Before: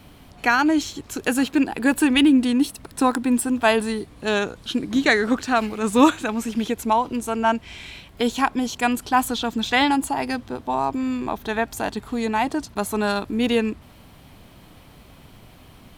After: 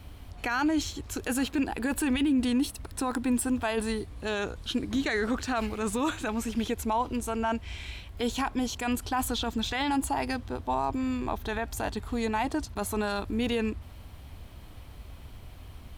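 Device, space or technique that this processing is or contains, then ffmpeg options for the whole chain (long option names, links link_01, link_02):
car stereo with a boomy subwoofer: -af "lowshelf=frequency=110:width_type=q:width=1.5:gain=9.5,alimiter=limit=-15.5dB:level=0:latency=1:release=11,volume=-4dB"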